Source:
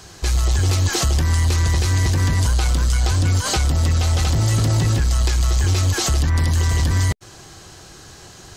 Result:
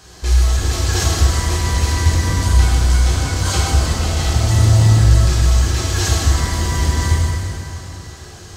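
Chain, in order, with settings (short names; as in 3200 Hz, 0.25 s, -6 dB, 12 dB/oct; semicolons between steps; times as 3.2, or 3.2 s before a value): plate-style reverb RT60 3.1 s, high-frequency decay 0.8×, DRR -6.5 dB; gain -4.5 dB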